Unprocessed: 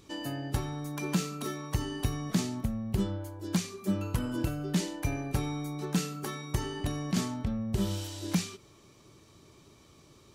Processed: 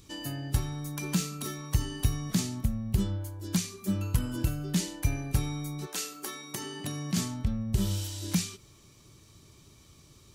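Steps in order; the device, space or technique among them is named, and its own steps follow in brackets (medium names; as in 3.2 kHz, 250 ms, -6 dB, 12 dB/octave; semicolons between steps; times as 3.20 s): 5.85–7.16 s: high-pass 420 Hz -> 110 Hz 24 dB/octave; smiley-face EQ (bass shelf 170 Hz +7 dB; peaking EQ 510 Hz -5.5 dB 2.9 oct; treble shelf 5.2 kHz +7 dB)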